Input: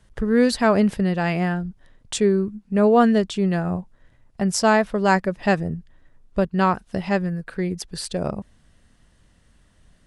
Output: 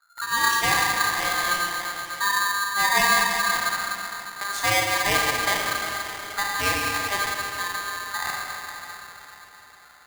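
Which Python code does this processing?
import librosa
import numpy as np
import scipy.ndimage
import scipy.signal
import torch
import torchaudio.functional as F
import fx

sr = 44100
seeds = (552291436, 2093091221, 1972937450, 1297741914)

y = fx.env_lowpass(x, sr, base_hz=410.0, full_db=-17.0)
y = fx.echo_diffused(y, sr, ms=604, feedback_pct=52, wet_db=-15.0)
y = fx.power_curve(y, sr, exponent=1.4, at=(3.46, 4.5))
y = fx.rev_schroeder(y, sr, rt60_s=3.1, comb_ms=28, drr_db=-2.0)
y = y * np.sign(np.sin(2.0 * np.pi * 1400.0 * np.arange(len(y)) / sr))
y = y * librosa.db_to_amplitude(-7.5)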